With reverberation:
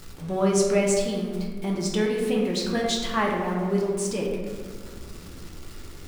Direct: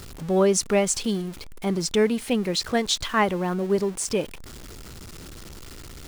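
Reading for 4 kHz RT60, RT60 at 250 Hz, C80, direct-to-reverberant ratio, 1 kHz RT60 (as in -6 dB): 0.85 s, 2.8 s, 4.0 dB, -2.5 dB, 1.5 s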